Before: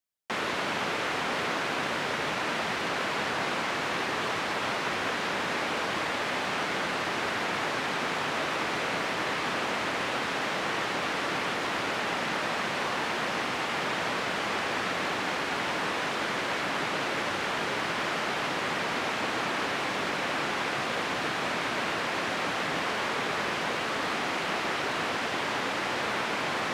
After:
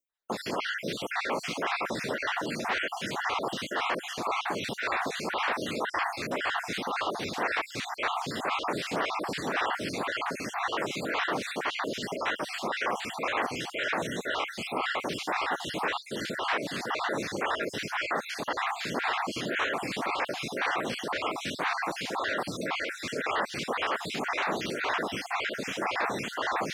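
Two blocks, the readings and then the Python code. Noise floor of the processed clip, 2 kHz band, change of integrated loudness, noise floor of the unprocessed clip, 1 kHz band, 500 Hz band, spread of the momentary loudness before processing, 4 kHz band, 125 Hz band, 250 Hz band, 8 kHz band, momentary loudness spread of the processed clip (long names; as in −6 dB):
−42 dBFS, −2.0 dB, −1.5 dB, −31 dBFS, −1.0 dB, −1.0 dB, 0 LU, −3.0 dB, −2.0 dB, −1.0 dB, −2.5 dB, 3 LU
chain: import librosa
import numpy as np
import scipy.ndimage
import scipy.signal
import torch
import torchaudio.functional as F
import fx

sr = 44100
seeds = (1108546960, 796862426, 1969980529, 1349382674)

y = fx.spec_dropout(x, sr, seeds[0], share_pct=45)
y = fx.stagger_phaser(y, sr, hz=1.9)
y = y * 10.0 ** (4.5 / 20.0)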